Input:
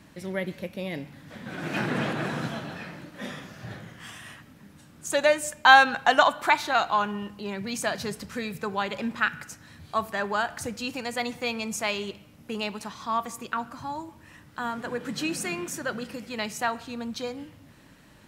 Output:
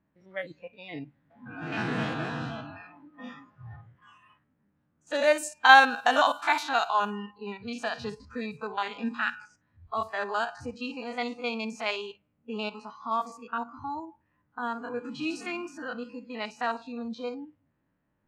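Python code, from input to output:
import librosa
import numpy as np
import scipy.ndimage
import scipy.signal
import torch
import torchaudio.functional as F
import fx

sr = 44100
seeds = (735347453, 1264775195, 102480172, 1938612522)

y = fx.spec_steps(x, sr, hold_ms=50)
y = fx.env_lowpass(y, sr, base_hz=1500.0, full_db=-21.0)
y = fx.noise_reduce_blind(y, sr, reduce_db=20)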